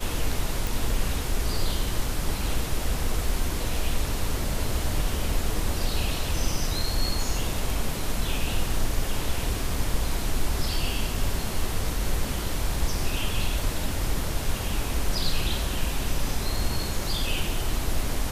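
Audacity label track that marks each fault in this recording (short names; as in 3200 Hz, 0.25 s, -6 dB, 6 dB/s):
0.670000	0.670000	pop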